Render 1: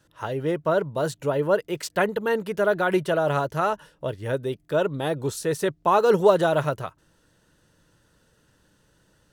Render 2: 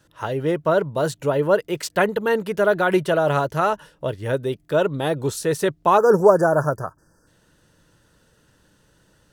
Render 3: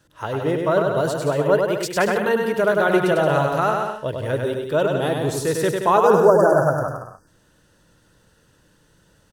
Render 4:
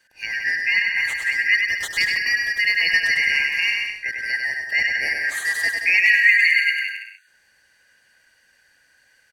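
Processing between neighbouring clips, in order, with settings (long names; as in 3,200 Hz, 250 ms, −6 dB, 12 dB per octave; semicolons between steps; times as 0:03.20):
time-frequency box erased 0:05.97–0:07.27, 1,800–4,600 Hz; level +3.5 dB
bouncing-ball delay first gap 100 ms, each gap 0.75×, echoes 5; level −1 dB
band-splitting scrambler in four parts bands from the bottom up 3142; level −1.5 dB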